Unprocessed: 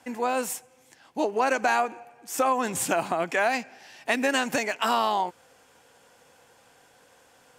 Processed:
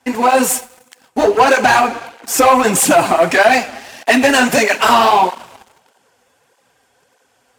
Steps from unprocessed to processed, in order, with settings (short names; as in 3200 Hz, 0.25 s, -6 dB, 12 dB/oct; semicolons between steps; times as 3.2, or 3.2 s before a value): two-slope reverb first 0.28 s, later 2.1 s, from -18 dB, DRR 8 dB; sample leveller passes 3; tape flanging out of phase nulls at 1.6 Hz, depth 7.3 ms; gain +7.5 dB